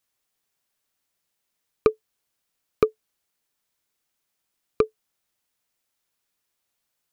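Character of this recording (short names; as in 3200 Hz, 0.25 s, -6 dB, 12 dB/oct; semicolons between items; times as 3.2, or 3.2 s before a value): noise floor -79 dBFS; spectral tilt -5.5 dB/oct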